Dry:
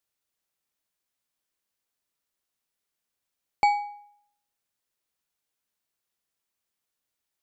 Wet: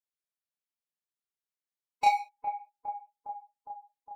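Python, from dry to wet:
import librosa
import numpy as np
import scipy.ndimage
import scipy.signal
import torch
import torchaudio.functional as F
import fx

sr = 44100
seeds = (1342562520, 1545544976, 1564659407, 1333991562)

y = fx.low_shelf(x, sr, hz=66.0, db=-6.0)
y = fx.leveller(y, sr, passes=3)
y = fx.stretch_vocoder(y, sr, factor=0.56)
y = fx.chorus_voices(y, sr, voices=2, hz=0.64, base_ms=29, depth_ms=4.1, mix_pct=50)
y = fx.echo_bbd(y, sr, ms=409, stages=4096, feedback_pct=70, wet_db=-10.0)
y = y * librosa.db_to_amplitude(-4.0)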